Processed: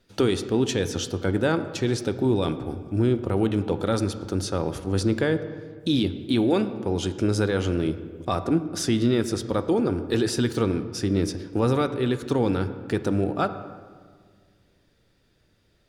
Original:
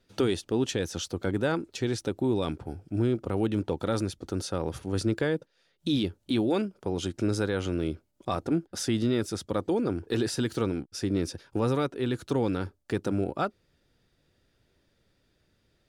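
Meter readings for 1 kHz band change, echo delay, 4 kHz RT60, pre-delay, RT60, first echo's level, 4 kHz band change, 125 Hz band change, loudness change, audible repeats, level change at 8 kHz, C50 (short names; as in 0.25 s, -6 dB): +4.5 dB, none, 1.1 s, 8 ms, 1.7 s, none, +4.0 dB, +5.0 dB, +4.5 dB, none, +4.0 dB, 12.0 dB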